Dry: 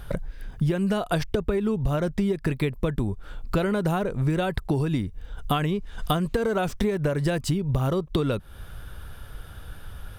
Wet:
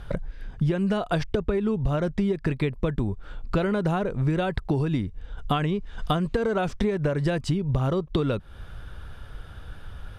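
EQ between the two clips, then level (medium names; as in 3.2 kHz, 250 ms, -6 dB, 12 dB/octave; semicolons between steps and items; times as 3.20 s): distance through air 70 m; 0.0 dB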